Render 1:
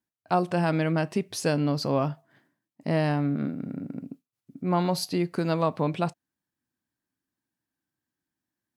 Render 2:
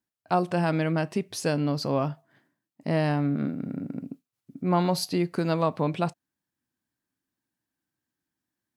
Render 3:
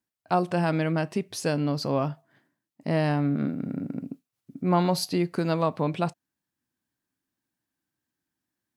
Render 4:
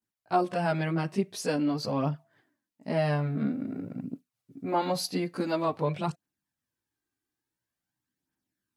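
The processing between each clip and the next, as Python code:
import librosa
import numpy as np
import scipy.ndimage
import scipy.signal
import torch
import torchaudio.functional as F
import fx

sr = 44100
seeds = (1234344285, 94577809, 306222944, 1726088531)

y1 = fx.rider(x, sr, range_db=3, speed_s=2.0)
y2 = fx.rider(y1, sr, range_db=3, speed_s=2.0)
y3 = fx.chorus_voices(y2, sr, voices=2, hz=0.24, base_ms=18, depth_ms=2.8, mix_pct=70)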